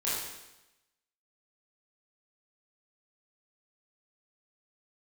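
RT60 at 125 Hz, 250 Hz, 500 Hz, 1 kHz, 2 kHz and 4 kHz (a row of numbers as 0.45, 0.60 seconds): 1.0, 1.0, 0.95, 1.0, 0.95, 0.95 seconds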